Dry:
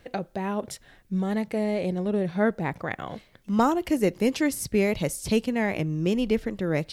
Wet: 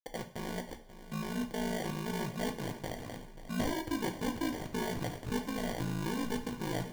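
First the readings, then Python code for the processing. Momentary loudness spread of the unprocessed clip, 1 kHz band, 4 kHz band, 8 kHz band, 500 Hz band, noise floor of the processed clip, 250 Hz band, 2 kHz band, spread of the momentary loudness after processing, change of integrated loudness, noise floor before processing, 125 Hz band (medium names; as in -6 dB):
10 LU, -8.5 dB, -4.0 dB, -8.0 dB, -12.5 dB, -51 dBFS, -10.5 dB, -8.5 dB, 7 LU, -10.5 dB, -58 dBFS, -8.0 dB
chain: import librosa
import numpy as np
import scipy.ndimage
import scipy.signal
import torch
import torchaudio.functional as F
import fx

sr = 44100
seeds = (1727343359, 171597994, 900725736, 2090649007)

p1 = fx.level_steps(x, sr, step_db=19)
p2 = x + (p1 * 10.0 ** (1.0 / 20.0))
p3 = fx.backlash(p2, sr, play_db=-26.0)
p4 = fx.sample_hold(p3, sr, seeds[0], rate_hz=1300.0, jitter_pct=0)
p5 = 10.0 ** (-21.0 / 20.0) * np.tanh(p4 / 10.0 ** (-21.0 / 20.0))
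p6 = p5 * np.sin(2.0 * np.pi * 27.0 * np.arange(len(p5)) / sr)
p7 = p6 + fx.echo_feedback(p6, sr, ms=536, feedback_pct=42, wet_db=-14.5, dry=0)
p8 = fx.rev_double_slope(p7, sr, seeds[1], early_s=0.38, late_s=1.8, knee_db=-18, drr_db=5.0)
y = p8 * 10.0 ** (-6.5 / 20.0)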